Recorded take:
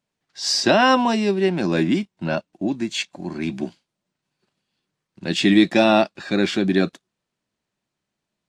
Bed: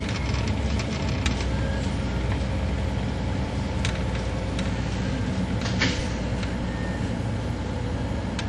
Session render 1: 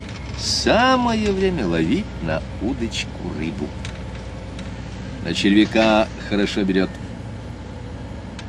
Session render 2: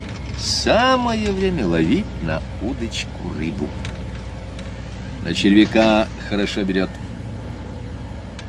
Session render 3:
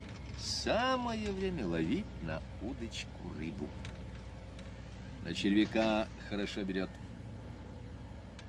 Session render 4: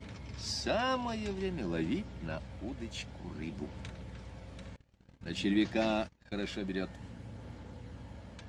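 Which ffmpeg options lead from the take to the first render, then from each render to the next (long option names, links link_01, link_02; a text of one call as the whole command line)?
ffmpeg -i in.wav -i bed.wav -filter_complex "[1:a]volume=-4.5dB[link_01];[0:a][link_01]amix=inputs=2:normalize=0" out.wav
ffmpeg -i in.wav -af "aphaser=in_gain=1:out_gain=1:delay=1.8:decay=0.23:speed=0.53:type=sinusoidal" out.wav
ffmpeg -i in.wav -af "volume=-16.5dB" out.wav
ffmpeg -i in.wav -filter_complex "[0:a]asettb=1/sr,asplit=3[link_01][link_02][link_03];[link_01]atrim=end=4.764[link_04];[link_02]atrim=start=4.76:end=6.39,asetpts=PTS-STARTPTS,afade=type=in:duration=0.004:curve=qsin,afade=type=out:start_time=1.626:duration=0.004:curve=qsin,agate=range=-26dB:threshold=-44dB:ratio=16:release=100:detection=peak[link_05];[link_03]atrim=start=6.386[link_06];[link_04][link_05]acrossfade=duration=0.004:curve1=hsin:curve2=qsin[link_07];[link_07][link_06]acrossfade=duration=0.004:curve1=qsin:curve2=hsin" out.wav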